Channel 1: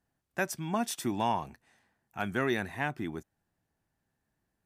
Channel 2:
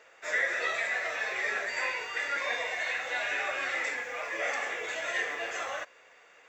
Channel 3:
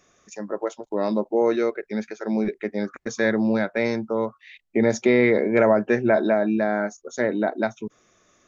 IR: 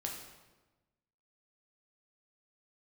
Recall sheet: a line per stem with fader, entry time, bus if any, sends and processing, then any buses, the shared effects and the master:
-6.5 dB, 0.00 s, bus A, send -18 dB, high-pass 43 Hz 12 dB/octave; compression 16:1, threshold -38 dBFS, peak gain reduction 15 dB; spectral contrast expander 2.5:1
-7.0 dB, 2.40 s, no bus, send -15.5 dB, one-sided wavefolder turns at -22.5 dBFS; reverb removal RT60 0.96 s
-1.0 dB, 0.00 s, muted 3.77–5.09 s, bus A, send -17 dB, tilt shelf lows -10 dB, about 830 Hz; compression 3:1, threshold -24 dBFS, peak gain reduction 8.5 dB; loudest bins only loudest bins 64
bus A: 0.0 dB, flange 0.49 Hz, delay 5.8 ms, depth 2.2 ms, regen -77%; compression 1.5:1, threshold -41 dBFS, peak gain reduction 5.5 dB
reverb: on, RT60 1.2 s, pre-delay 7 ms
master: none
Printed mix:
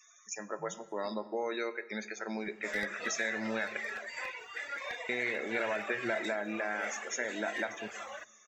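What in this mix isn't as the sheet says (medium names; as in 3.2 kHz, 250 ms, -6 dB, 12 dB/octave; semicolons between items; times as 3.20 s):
stem 1 -6.5 dB -> -16.5 dB; stem 2: send -15.5 dB -> -21.5 dB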